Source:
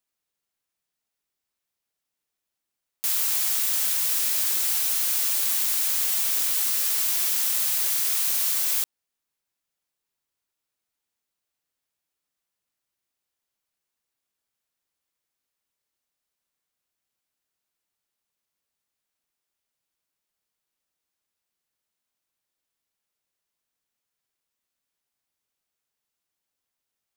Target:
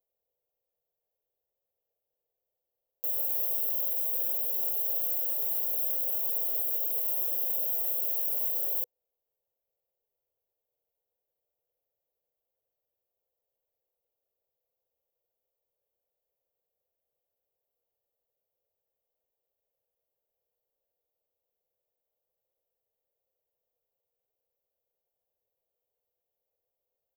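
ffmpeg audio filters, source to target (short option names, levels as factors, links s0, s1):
-af "firequalizer=gain_entry='entry(110,0);entry(160,-7);entry(270,-11);entry(490,13);entry(1000,-9);entry(1600,-28);entry(3000,-14);entry(5100,-30);entry(7900,-30);entry(13000,0)':delay=0.05:min_phase=1,alimiter=limit=0.1:level=0:latency=1:release=37"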